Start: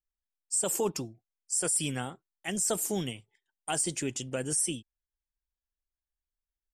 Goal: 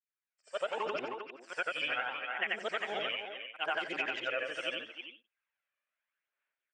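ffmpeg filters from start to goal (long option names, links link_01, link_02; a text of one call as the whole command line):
ffmpeg -i in.wav -filter_complex "[0:a]afftfilt=real='re':imag='-im':win_size=8192:overlap=0.75,tiltshelf=frequency=730:gain=-8.5,aphaser=in_gain=1:out_gain=1:delay=1.7:decay=0.48:speed=0.76:type=sinusoidal,asplit=2[link_01][link_02];[link_02]adelay=310,highpass=300,lowpass=3400,asoftclip=type=hard:threshold=-21.5dB,volume=-8dB[link_03];[link_01][link_03]amix=inputs=2:normalize=0,dynaudnorm=framelen=230:gausssize=5:maxgain=13dB,highpass=420,equalizer=frequency=560:width_type=q:width=4:gain=5,equalizer=frequency=820:width_type=q:width=4:gain=-3,equalizer=frequency=1500:width_type=q:width=4:gain=5,equalizer=frequency=2400:width_type=q:width=4:gain=4,lowpass=frequency=2600:width=0.5412,lowpass=frequency=2600:width=1.3066,acompressor=threshold=-27dB:ratio=6,volume=-3.5dB" out.wav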